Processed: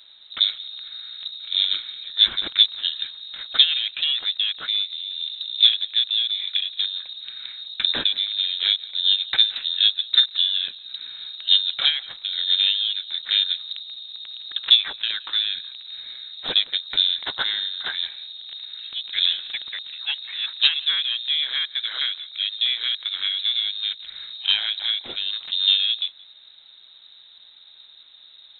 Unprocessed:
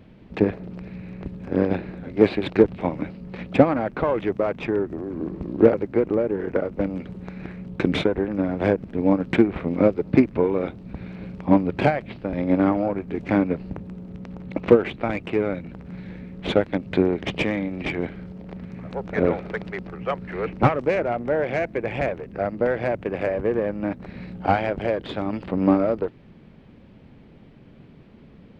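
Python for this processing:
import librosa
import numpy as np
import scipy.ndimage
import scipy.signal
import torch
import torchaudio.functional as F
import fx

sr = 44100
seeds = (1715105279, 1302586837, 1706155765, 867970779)

y = fx.freq_invert(x, sr, carrier_hz=3900)
y = y + 10.0 ** (-23.0 / 20.0) * np.pad(y, (int(173 * sr / 1000.0), 0))[:len(y)]
y = y * librosa.db_to_amplitude(-1.0)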